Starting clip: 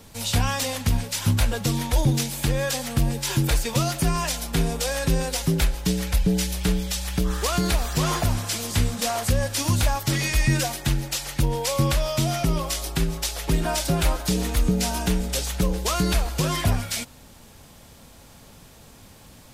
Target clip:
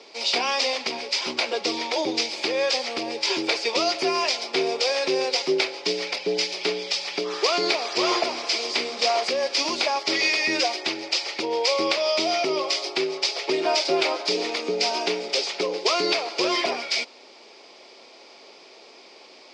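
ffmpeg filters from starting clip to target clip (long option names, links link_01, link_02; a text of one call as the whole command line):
ffmpeg -i in.wav -af "highpass=frequency=350:width=0.5412,highpass=frequency=350:width=1.3066,equalizer=frequency=380:width_type=q:width=4:gain=9,equalizer=frequency=660:width_type=q:width=4:gain=3,equalizer=frequency=1600:width_type=q:width=4:gain=-7,equalizer=frequency=2300:width_type=q:width=4:gain=8,equalizer=frequency=4900:width_type=q:width=4:gain=10,lowpass=frequency=5300:width=0.5412,lowpass=frequency=5300:width=1.3066,volume=2dB" out.wav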